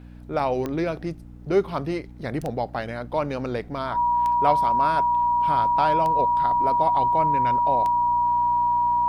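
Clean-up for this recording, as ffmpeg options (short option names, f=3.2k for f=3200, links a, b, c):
-af "adeclick=t=4,bandreject=f=60.1:t=h:w=4,bandreject=f=120.2:t=h:w=4,bandreject=f=180.3:t=h:w=4,bandreject=f=240.4:t=h:w=4,bandreject=f=300.5:t=h:w=4,bandreject=f=960:w=30"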